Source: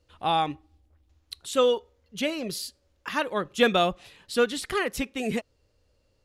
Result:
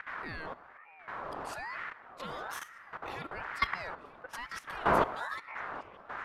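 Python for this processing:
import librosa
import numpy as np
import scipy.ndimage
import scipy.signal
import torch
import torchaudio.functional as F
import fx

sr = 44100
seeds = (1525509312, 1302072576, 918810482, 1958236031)

y = fx.dmg_wind(x, sr, seeds[0], corner_hz=440.0, level_db=-25.0)
y = fx.peak_eq(y, sr, hz=6400.0, db=-4.5, octaves=1.5)
y = fx.level_steps(y, sr, step_db=16)
y = fx.echo_stepped(y, sr, ms=310, hz=260.0, octaves=1.4, feedback_pct=70, wet_db=-11)
y = fx.rev_plate(y, sr, seeds[1], rt60_s=1.4, hf_ratio=0.55, predelay_ms=0, drr_db=18.5)
y = fx.ring_lfo(y, sr, carrier_hz=1200.0, swing_pct=35, hz=1.1)
y = y * librosa.db_to_amplitude(-5.5)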